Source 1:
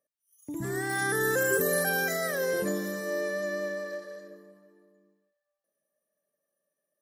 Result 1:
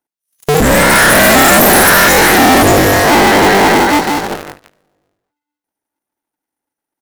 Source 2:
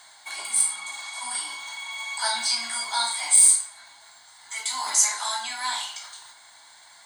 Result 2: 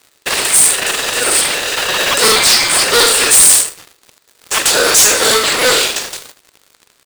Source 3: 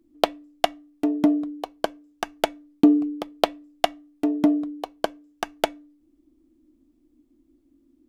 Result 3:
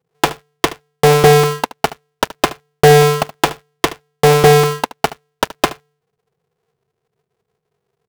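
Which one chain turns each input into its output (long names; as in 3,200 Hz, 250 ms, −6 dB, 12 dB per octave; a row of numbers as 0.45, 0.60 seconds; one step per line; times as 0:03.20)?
sub-harmonics by changed cycles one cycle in 2, inverted
leveller curve on the samples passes 5
single-tap delay 74 ms −17.5 dB
normalise the peak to −3 dBFS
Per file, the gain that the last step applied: +10.0, +1.0, −2.0 decibels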